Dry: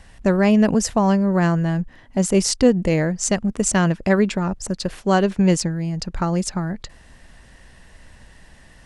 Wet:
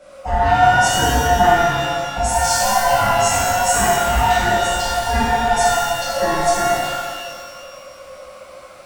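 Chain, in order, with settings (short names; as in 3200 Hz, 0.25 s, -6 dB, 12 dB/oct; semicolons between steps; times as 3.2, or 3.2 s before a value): band-swap scrambler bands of 500 Hz; maximiser +12 dB; shimmer reverb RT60 1.8 s, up +12 st, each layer -8 dB, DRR -11 dB; gain -17.5 dB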